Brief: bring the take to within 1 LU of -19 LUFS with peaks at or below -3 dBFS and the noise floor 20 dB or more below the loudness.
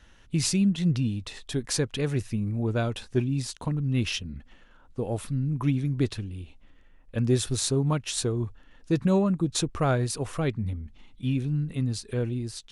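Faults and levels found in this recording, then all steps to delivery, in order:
loudness -28.0 LUFS; peak -10.5 dBFS; loudness target -19.0 LUFS
-> gain +9 dB; limiter -3 dBFS

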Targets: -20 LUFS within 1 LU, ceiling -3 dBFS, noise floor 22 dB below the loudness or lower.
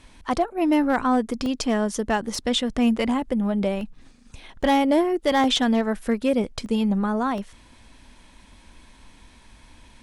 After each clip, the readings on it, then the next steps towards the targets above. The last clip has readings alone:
clipped 0.2%; flat tops at -12.5 dBFS; dropouts 7; longest dropout 1.5 ms; loudness -23.0 LUFS; peak -12.5 dBFS; loudness target -20.0 LUFS
-> clip repair -12.5 dBFS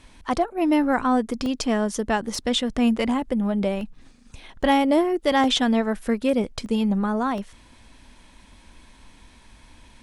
clipped 0.0%; dropouts 7; longest dropout 1.5 ms
-> interpolate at 1.46/2.35/3.81/4.63/5.44/6.66/7.38, 1.5 ms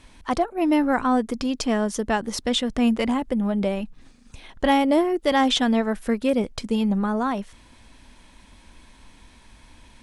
dropouts 0; loudness -23.0 LUFS; peak -7.5 dBFS; loudness target -20.0 LUFS
-> gain +3 dB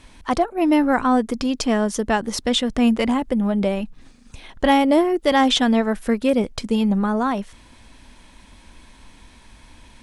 loudness -20.0 LUFS; peak -4.5 dBFS; noise floor -49 dBFS

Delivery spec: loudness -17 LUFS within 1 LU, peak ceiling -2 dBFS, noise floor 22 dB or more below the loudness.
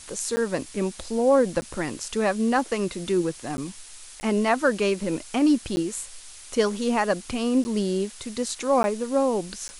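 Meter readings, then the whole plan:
dropouts 8; longest dropout 10 ms; noise floor -44 dBFS; noise floor target -47 dBFS; loudness -25.0 LUFS; peak -8.5 dBFS; loudness target -17.0 LUFS
-> interpolate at 0.36/1.61/3.57/4.2/5.76/7.64/8.83/9.68, 10 ms; noise print and reduce 6 dB; gain +8 dB; limiter -2 dBFS

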